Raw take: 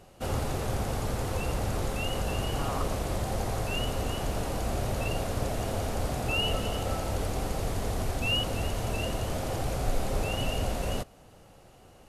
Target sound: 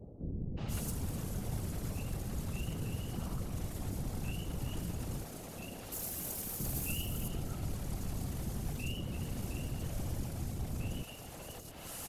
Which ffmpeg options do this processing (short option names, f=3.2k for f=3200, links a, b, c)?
-filter_complex "[0:a]adynamicequalizer=threshold=0.00141:dfrequency=10000:dqfactor=0.75:tfrequency=10000:tqfactor=0.75:attack=5:release=100:ratio=0.375:range=3:mode=cutabove:tftype=bell,acrossover=split=360[a][b];[a]asoftclip=type=hard:threshold=-29dB[c];[b]acompressor=threshold=-48dB:ratio=12[d];[c][d]amix=inputs=2:normalize=0,alimiter=level_in=13.5dB:limit=-24dB:level=0:latency=1:release=102,volume=-13.5dB,crystalizer=i=5.5:c=0,asoftclip=type=tanh:threshold=-38dB,asettb=1/sr,asplit=3[e][f][g];[e]atrim=end=5.244[h];[f]atrim=start=5.24:end=6.6,asetpts=PTS-STARTPTS,afade=t=in:d=0.004:c=qsin,afade=t=out:st=1.356:d=0.004:c=qsin,aemphasis=mode=production:type=bsi[i];[g]atrim=start=6.596[j];[h][i]acrossfade=d=0.004:c1=hsin:c2=qsin[k];[k][j]acrossfade=d=0.004:c1=qsin:c2=hsin,afftfilt=real='hypot(re,im)*cos(2*PI*random(0))':imag='hypot(re,im)*sin(2*PI*random(1))':win_size=512:overlap=0.75,acrossover=split=480|4100[l][m][n];[m]adelay=570[o];[n]adelay=680[p];[l][o][p]amix=inputs=3:normalize=0,volume=13dB"